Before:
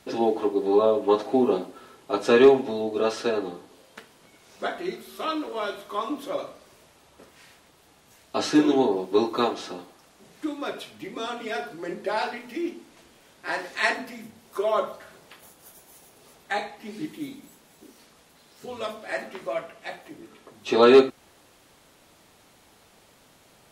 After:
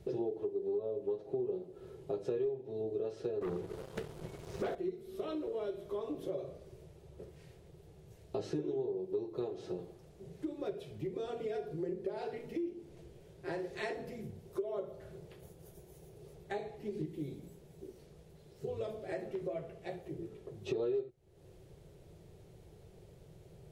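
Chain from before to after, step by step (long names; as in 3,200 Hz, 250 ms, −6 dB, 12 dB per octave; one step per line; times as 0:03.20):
drawn EQ curve 160 Hz 0 dB, 260 Hz −23 dB, 370 Hz −3 dB, 1,100 Hz −27 dB, 2,100 Hz −24 dB
0:03.41–0:04.75: leveller curve on the samples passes 3
downward compressor 6 to 1, threshold −45 dBFS, peak gain reduction 26.5 dB
level +10 dB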